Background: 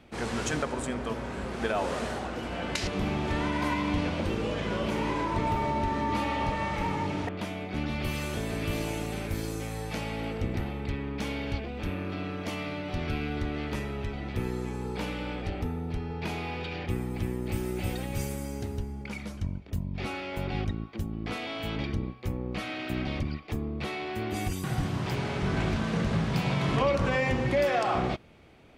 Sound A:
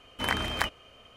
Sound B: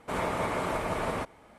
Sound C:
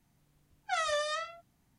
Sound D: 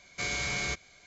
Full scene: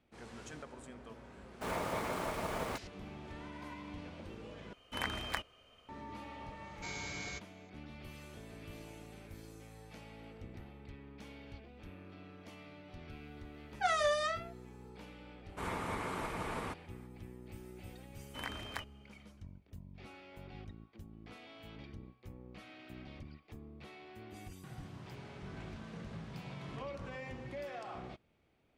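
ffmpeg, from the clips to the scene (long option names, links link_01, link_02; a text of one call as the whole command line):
ffmpeg -i bed.wav -i cue0.wav -i cue1.wav -i cue2.wav -i cue3.wav -filter_complex "[2:a]asplit=2[link_01][link_02];[1:a]asplit=2[link_03][link_04];[0:a]volume=-18.5dB[link_05];[link_01]aeval=exprs='val(0)*gte(abs(val(0)),0.0158)':channel_layout=same[link_06];[3:a]equalizer=frequency=570:width=0.3:gain=5.5[link_07];[link_02]equalizer=frequency=610:width_type=o:width=0.5:gain=-8[link_08];[link_05]asplit=2[link_09][link_10];[link_09]atrim=end=4.734[link_11];[link_03]atrim=end=1.16,asetpts=PTS-STARTPTS,volume=-9dB[link_12];[link_10]atrim=start=5.886[link_13];[link_06]atrim=end=1.58,asetpts=PTS-STARTPTS,volume=-7dB,afade=type=in:duration=0.004:curve=hsin,afade=type=out:start_time=1.576:duration=0.004:curve=hsin,adelay=1530[link_14];[4:a]atrim=end=1.06,asetpts=PTS-STARTPTS,volume=-11.5dB,afade=type=in:duration=0.004:curve=hsin,afade=type=out:start_time=1.056:duration=0.004:curve=hsin,adelay=6640[link_15];[link_07]atrim=end=1.78,asetpts=PTS-STARTPTS,volume=-4dB,afade=type=in:duration=0.004:curve=hsin,afade=type=out:start_time=1.776:duration=0.004:curve=hsin,adelay=13120[link_16];[link_08]atrim=end=1.58,asetpts=PTS-STARTPTS,volume=-7dB,afade=type=in:duration=0.004:curve=hsin,afade=type=out:start_time=1.576:duration=0.004:curve=hsin,adelay=15490[link_17];[link_04]atrim=end=1.16,asetpts=PTS-STARTPTS,volume=-14dB,afade=type=in:duration=0.004:curve=hsin,afade=type=out:start_time=1.156:duration=0.004:curve=hsin,adelay=18150[link_18];[link_11][link_12]acrossfade=duration=0.004:curve1=hsin:curve2=hsin[link_19];[link_19][link_13]acrossfade=duration=0.004:curve1=hsin:curve2=hsin[link_20];[link_20][link_14][link_15][link_16][link_17][link_18]amix=inputs=6:normalize=0" out.wav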